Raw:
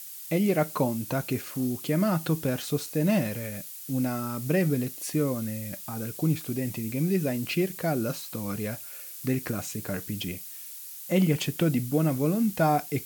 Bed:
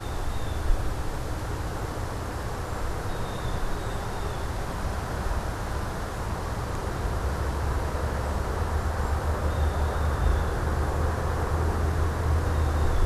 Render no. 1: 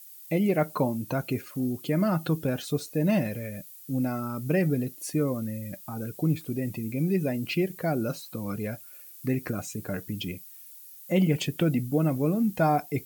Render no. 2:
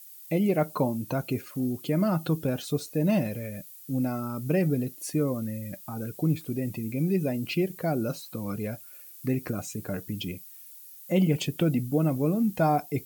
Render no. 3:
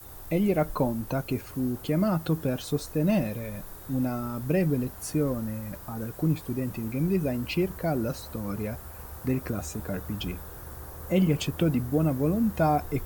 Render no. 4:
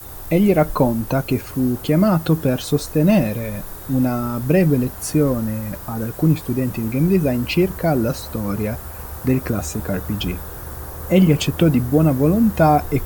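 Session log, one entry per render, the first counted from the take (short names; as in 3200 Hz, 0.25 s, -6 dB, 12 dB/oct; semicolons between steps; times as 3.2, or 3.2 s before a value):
denoiser 11 dB, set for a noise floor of -42 dBFS
dynamic EQ 1800 Hz, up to -5 dB, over -48 dBFS, Q 2.1
add bed -16.5 dB
gain +9.5 dB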